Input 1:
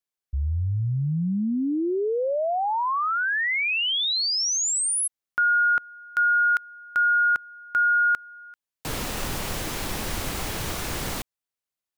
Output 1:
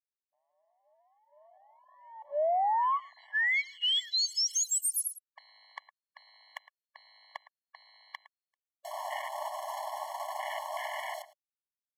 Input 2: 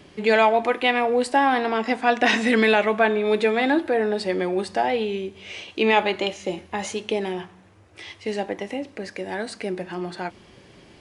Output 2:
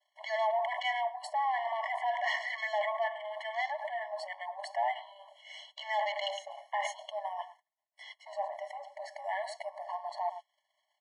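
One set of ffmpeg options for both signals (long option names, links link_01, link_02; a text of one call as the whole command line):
ffmpeg -i in.wav -filter_complex "[0:a]afwtdn=0.0224,asplit=2[link_01][link_02];[link_02]adelay=110.8,volume=-21dB,highshelf=frequency=4000:gain=-2.49[link_03];[link_01][link_03]amix=inputs=2:normalize=0,asplit=2[link_04][link_05];[link_05]acontrast=90,volume=-2dB[link_06];[link_04][link_06]amix=inputs=2:normalize=0,aresample=32000,aresample=44100,areverse,acompressor=threshold=-26dB:ratio=12:attack=2.8:release=25:knee=1:detection=rms,areverse,agate=range=-33dB:threshold=-49dB:ratio=3:release=40:detection=peak,afftfilt=real='re*eq(mod(floor(b*sr/1024/570),2),1)':imag='im*eq(mod(floor(b*sr/1024/570),2),1)':win_size=1024:overlap=0.75" out.wav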